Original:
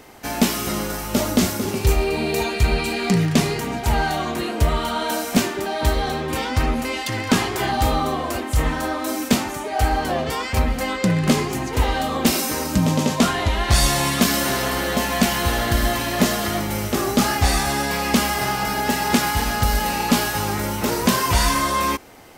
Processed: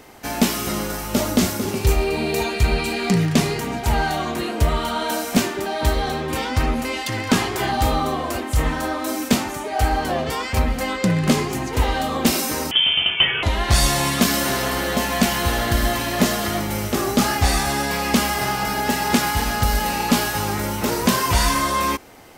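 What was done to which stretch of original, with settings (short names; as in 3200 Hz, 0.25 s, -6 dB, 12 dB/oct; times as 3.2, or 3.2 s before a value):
12.71–13.43 inverted band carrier 3300 Hz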